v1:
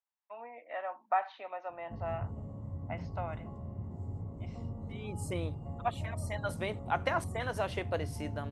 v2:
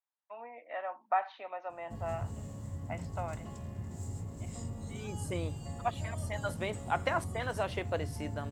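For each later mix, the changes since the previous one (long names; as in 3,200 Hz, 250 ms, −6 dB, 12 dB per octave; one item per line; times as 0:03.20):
background: remove Savitzky-Golay smoothing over 65 samples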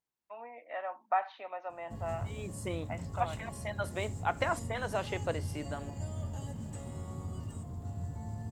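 second voice: entry −2.65 s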